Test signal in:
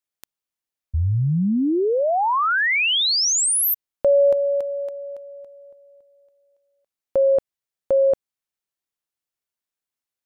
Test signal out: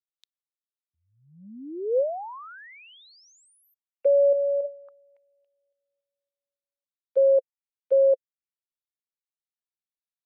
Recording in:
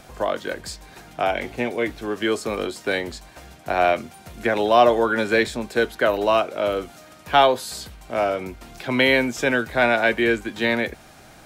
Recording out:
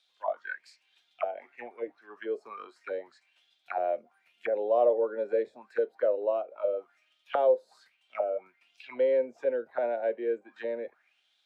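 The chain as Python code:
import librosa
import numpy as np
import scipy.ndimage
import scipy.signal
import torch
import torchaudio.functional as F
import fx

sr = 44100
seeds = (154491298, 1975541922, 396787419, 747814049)

y = scipy.signal.sosfilt(scipy.signal.butter(2, 170.0, 'highpass', fs=sr, output='sos'), x)
y = fx.noise_reduce_blind(y, sr, reduce_db=9)
y = fx.auto_wah(y, sr, base_hz=520.0, top_hz=3800.0, q=6.5, full_db=-19.5, direction='down')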